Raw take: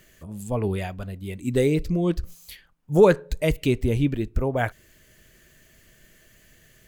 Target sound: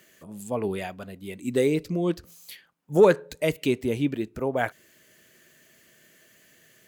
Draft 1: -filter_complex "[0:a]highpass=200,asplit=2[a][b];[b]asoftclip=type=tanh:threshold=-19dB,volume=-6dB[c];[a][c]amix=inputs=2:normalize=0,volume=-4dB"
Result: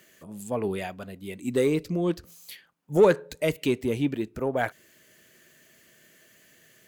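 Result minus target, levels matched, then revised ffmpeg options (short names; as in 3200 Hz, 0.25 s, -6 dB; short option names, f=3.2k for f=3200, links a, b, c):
soft clip: distortion +12 dB
-filter_complex "[0:a]highpass=200,asplit=2[a][b];[b]asoftclip=type=tanh:threshold=-8dB,volume=-6dB[c];[a][c]amix=inputs=2:normalize=0,volume=-4dB"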